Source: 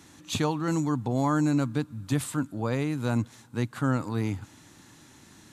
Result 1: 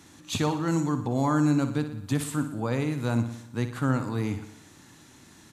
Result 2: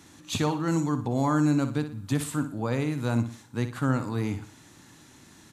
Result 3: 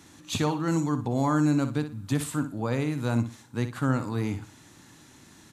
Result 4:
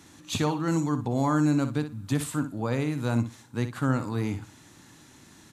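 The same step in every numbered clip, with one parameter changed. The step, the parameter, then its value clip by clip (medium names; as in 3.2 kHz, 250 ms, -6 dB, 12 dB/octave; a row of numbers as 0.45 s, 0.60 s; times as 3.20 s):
feedback delay, feedback: 58%, 36%, 23%, 15%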